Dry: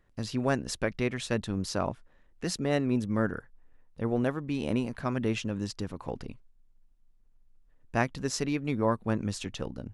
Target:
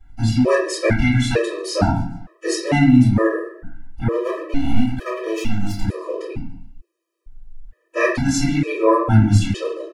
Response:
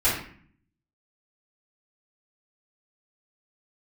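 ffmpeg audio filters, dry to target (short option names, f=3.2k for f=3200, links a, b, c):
-filter_complex "[0:a]asplit=4[a][b][c][d];[b]adelay=142,afreqshift=40,volume=-22dB[e];[c]adelay=284,afreqshift=80,volume=-29.1dB[f];[d]adelay=426,afreqshift=120,volume=-36.3dB[g];[a][e][f][g]amix=inputs=4:normalize=0,asettb=1/sr,asplit=3[h][i][j];[h]atrim=end=4.074[k];[i]atrim=start=4.07:end=5.83,asetpts=PTS-STARTPTS,afade=t=in:d=0.004:c=qsin,afade=t=out:st=1.756:d=0.004:c=qsin,aeval=exprs='max(val(0),0)':c=same[l];[j]atrim=start=5.826[m];[k][l]acrossfade=d=0.004:c1=hsin:c2=qsin[n];[n][m]acrossfade=d=0.004:c1=qsin:c2=hsin[o];[1:a]atrim=start_sample=2205,afade=t=out:st=0.43:d=0.01,atrim=end_sample=19404[p];[o][p]afir=irnorm=-1:irlink=0,afftfilt=real='re*gt(sin(2*PI*1.1*pts/sr)*(1-2*mod(floor(b*sr/1024/330),2)),0)':imag='im*gt(sin(2*PI*1.1*pts/sr)*(1-2*mod(floor(b*sr/1024/330),2)),0)':win_size=1024:overlap=0.75,volume=1dB"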